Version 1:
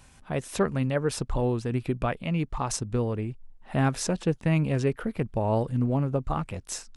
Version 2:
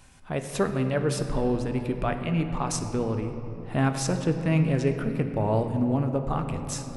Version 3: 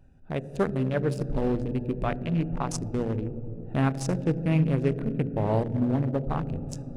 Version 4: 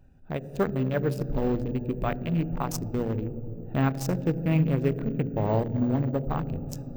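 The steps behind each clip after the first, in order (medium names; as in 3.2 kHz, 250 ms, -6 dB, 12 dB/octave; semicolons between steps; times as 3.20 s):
hum notches 60/120 Hz; on a send at -6 dB: reverberation RT60 3.5 s, pre-delay 3 ms
local Wiener filter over 41 samples
careless resampling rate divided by 2×, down none, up hold; endings held to a fixed fall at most 260 dB/s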